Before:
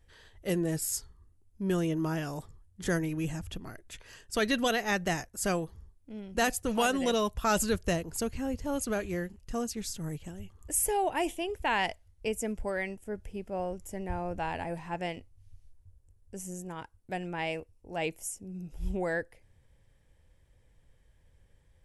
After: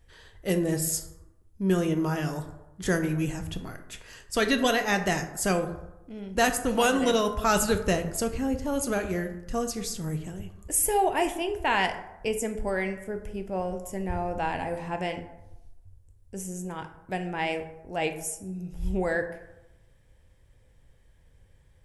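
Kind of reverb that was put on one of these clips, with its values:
dense smooth reverb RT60 0.93 s, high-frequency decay 0.45×, DRR 6.5 dB
level +3.5 dB

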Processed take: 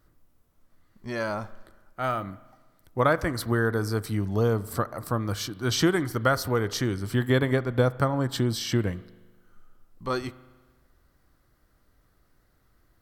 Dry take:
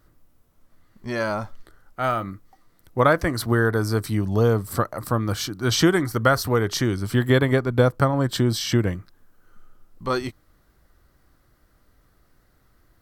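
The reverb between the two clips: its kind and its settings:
spring reverb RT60 1.3 s, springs 39 ms, chirp 50 ms, DRR 17.5 dB
level −4.5 dB

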